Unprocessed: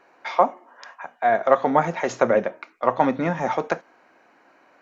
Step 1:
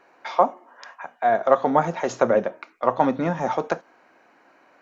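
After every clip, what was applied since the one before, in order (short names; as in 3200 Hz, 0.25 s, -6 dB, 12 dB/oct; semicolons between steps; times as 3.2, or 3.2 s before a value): dynamic EQ 2100 Hz, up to -6 dB, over -40 dBFS, Q 2.1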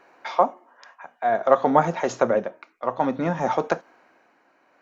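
tremolo 0.55 Hz, depth 57%; gain +1.5 dB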